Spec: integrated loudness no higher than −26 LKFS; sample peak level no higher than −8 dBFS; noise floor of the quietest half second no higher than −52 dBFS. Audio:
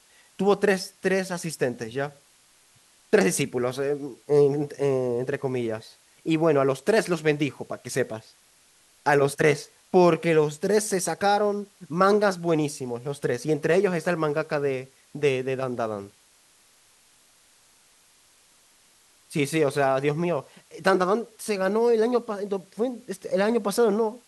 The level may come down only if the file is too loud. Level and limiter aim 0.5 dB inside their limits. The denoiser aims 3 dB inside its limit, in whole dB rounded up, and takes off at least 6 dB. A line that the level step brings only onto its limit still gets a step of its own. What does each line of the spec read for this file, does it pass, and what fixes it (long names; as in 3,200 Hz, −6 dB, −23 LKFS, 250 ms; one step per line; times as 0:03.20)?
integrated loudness −24.5 LKFS: out of spec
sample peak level −6.5 dBFS: out of spec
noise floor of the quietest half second −59 dBFS: in spec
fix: level −2 dB